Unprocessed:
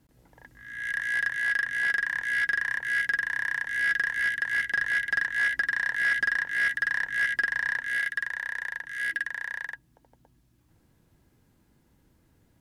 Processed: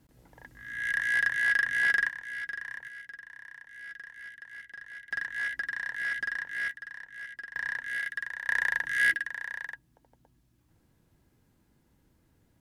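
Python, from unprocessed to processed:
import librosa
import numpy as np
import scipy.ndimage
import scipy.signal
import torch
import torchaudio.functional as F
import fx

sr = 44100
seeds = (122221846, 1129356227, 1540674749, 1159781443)

y = fx.gain(x, sr, db=fx.steps((0.0, 1.0), (2.09, -10.5), (2.88, -18.5), (5.11, -7.0), (6.71, -16.0), (7.56, -5.0), (8.49, 6.0), (9.14, -3.0)))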